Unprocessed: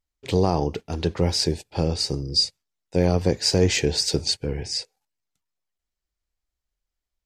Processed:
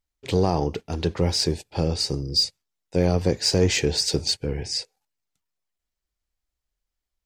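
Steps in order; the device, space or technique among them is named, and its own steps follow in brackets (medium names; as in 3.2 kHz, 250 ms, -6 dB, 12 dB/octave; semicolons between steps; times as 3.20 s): parallel distortion (in parallel at -13 dB: hard clipper -21 dBFS, distortion -6 dB); on the sum: trim -1.5 dB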